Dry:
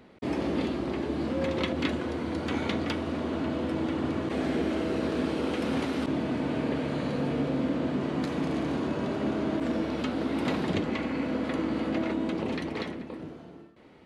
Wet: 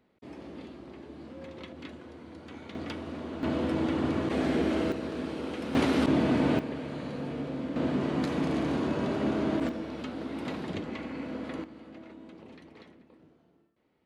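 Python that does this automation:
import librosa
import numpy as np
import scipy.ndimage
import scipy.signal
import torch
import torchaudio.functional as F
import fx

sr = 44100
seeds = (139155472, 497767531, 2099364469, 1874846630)

y = fx.gain(x, sr, db=fx.steps((0.0, -15.0), (2.75, -7.0), (3.43, 1.0), (4.92, -6.0), (5.75, 4.5), (6.59, -6.5), (7.76, 0.5), (9.69, -7.0), (11.64, -18.5)))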